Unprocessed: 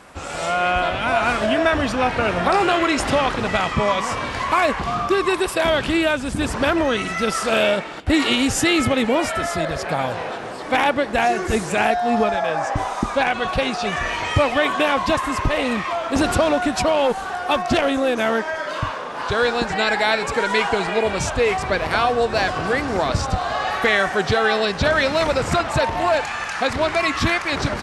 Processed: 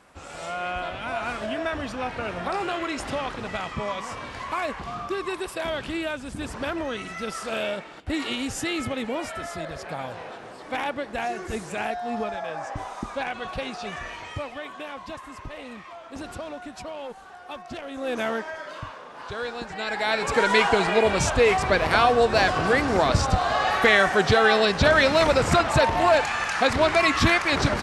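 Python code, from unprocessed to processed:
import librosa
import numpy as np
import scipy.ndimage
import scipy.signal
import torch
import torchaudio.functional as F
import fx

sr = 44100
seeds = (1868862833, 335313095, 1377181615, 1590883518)

y = fx.gain(x, sr, db=fx.line((13.92, -10.5), (14.64, -18.0), (17.87, -18.0), (18.15, -6.0), (18.88, -12.5), (19.74, -12.5), (20.38, 0.0)))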